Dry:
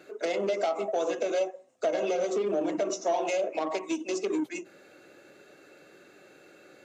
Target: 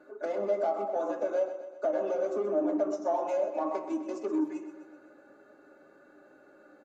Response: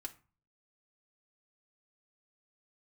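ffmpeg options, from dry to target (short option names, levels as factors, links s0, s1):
-filter_complex "[0:a]highshelf=f=1800:t=q:w=1.5:g=-12,aecho=1:1:127|254|381|508|635|762:0.282|0.155|0.0853|0.0469|0.0258|0.0142[s0];[1:a]atrim=start_sample=2205[s1];[s0][s1]afir=irnorm=-1:irlink=0"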